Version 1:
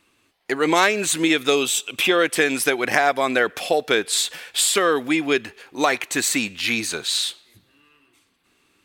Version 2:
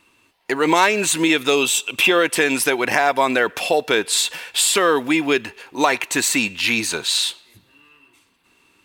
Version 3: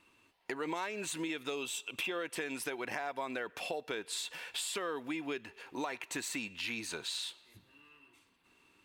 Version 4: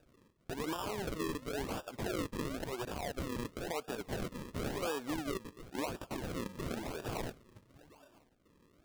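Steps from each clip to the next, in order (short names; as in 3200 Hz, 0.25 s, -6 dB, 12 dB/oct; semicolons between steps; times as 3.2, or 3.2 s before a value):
in parallel at -1 dB: limiter -12.5 dBFS, peak gain reduction 11 dB; on the sum: small resonant body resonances 950/2700 Hz, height 10 dB; companded quantiser 8-bit; gain -2.5 dB
high shelf 4600 Hz -4.5 dB; compressor 3:1, threshold -31 dBFS, peak gain reduction 15 dB; gain -8 dB
limiter -29 dBFS, peak gain reduction 7 dB; decimation with a swept rate 41×, swing 100% 0.96 Hz; gain +1.5 dB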